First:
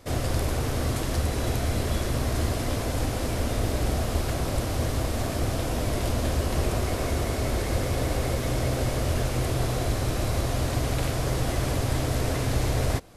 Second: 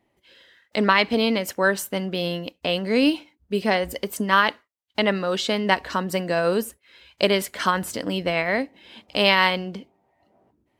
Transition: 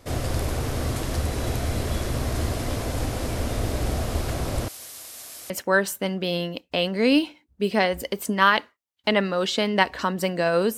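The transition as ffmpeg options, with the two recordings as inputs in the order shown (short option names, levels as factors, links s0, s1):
-filter_complex "[0:a]asettb=1/sr,asplit=3[s0][s1][s2];[s0]atrim=end=4.684[s3];[s1]atrim=start=4.68:end=5.5,asetpts=PTS-STARTPTS,afade=t=in:d=0.004:c=qsin,afade=t=out:st=0.816:d=0.004:c=qsin,aderivative[s4];[s2]atrim=start=5.496[s5];[s3][s4]acrossfade=d=0.004:c1=hsin:c2=qsin[s6];[s6][s5]acrossfade=d=0.004:c1=qsin:c2=hsin,apad=whole_dur=10.77,atrim=end=10.77,atrim=end=5.502[s7];[1:a]atrim=start=1.408:end=6.68[s8];[s7][s8]acrossfade=d=0.004:c1=hsin:c2=hsin"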